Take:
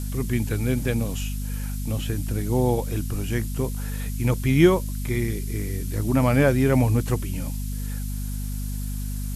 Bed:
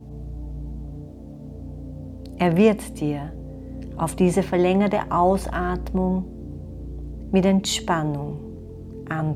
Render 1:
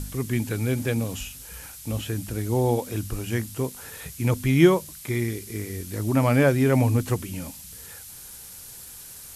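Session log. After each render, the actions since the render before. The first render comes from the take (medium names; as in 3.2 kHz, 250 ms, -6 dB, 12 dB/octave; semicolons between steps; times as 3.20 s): de-hum 50 Hz, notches 5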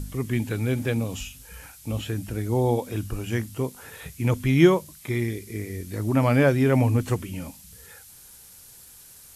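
noise print and reduce 6 dB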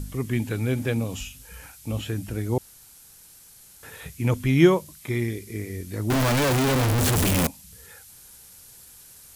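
2.58–3.83 s: room tone; 6.10–7.47 s: one-bit comparator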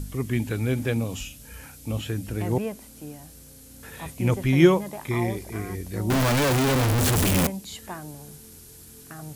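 add bed -15 dB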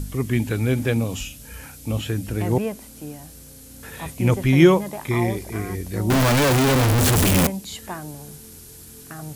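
trim +4 dB; peak limiter -3 dBFS, peak gain reduction 2.5 dB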